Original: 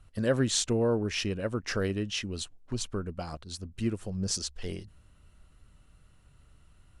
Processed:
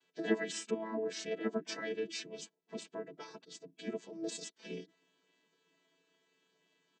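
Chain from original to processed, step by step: vocoder on a held chord bare fifth, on A3; comb 6.1 ms, depth 82%; spectral gate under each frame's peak -10 dB weak; high-pass 180 Hz 12 dB/octave; peaking EQ 1.1 kHz -9.5 dB 1.1 oct; trim +5 dB

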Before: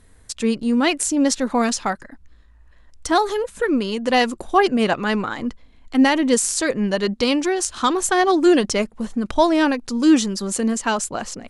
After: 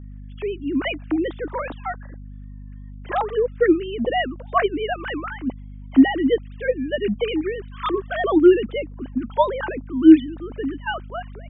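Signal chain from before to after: formants replaced by sine waves; hum 50 Hz, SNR 16 dB; trim -1.5 dB

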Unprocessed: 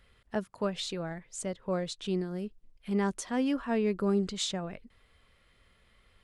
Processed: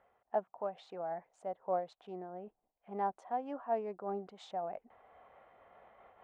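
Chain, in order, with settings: local Wiener filter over 9 samples; reverse; upward compressor, threshold -34 dBFS; reverse; band-pass filter 750 Hz, Q 5.6; random flutter of the level, depth 55%; trim +10 dB

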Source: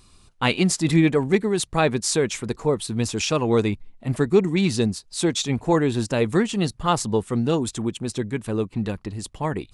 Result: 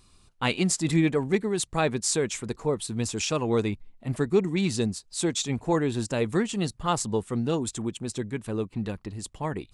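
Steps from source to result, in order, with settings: dynamic bell 7.6 kHz, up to +5 dB, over -45 dBFS, Q 2.4; trim -5 dB

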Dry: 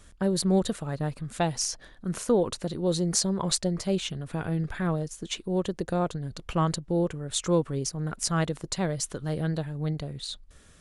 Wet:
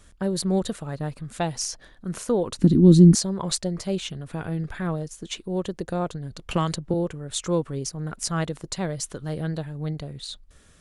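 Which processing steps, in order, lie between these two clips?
2.59–3.15 s: resonant low shelf 400 Hz +13.5 dB, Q 3; 6.51–6.94 s: three bands compressed up and down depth 100%

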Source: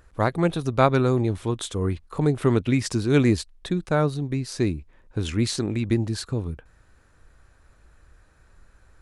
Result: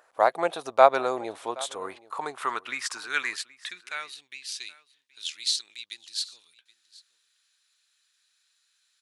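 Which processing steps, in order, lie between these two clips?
high-pass sweep 680 Hz -> 3.7 kHz, 1.60–4.90 s; on a send: delay 774 ms -21.5 dB; on the sum: trim -1.5 dB

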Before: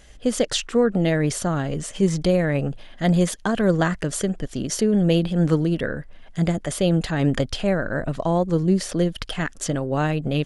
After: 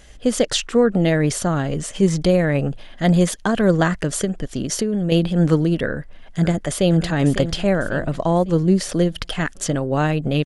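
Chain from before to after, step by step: 4.24–5.12 s: compression, threshold -21 dBFS, peak gain reduction 7 dB; 5.88–6.95 s: echo throw 550 ms, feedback 45%, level -10.5 dB; trim +3 dB

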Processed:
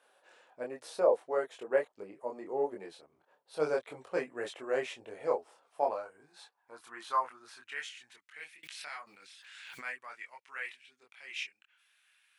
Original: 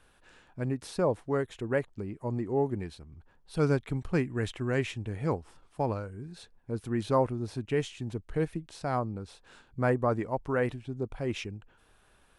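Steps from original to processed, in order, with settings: high-pass sweep 550 Hz -> 2.2 kHz, 5.50–8.51 s; chorus voices 4, 0.42 Hz, delay 24 ms, depth 4.2 ms; 8.63–9.85 s: swell ahead of each attack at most 27 dB/s; trim -1 dB

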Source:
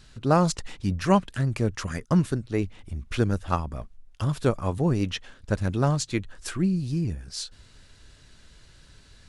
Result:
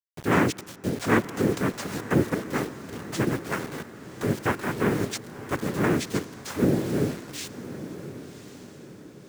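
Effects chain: treble shelf 3.8 kHz -5.5 dB; in parallel at -1.5 dB: peak limiter -17 dBFS, peak gain reduction 9 dB; on the sum: vibrato 0.68 Hz 37 cents; noise-vocoded speech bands 3; bit crusher 6-bit; echo that smears into a reverb 1096 ms, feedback 44%, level -13 dB; on a send at -22.5 dB: reverberation RT60 3.2 s, pre-delay 70 ms; on the sum: trim -4.5 dB

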